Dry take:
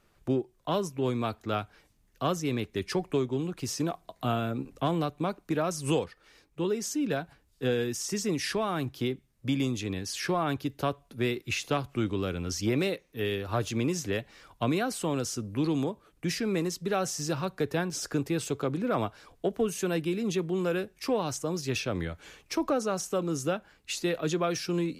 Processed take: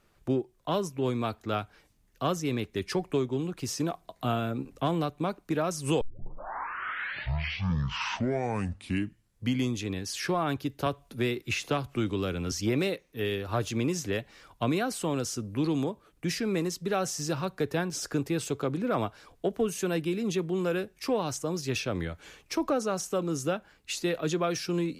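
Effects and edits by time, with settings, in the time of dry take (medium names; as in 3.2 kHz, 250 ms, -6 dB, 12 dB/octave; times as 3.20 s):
6.01 s: tape start 3.81 s
10.86–12.52 s: three bands compressed up and down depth 40%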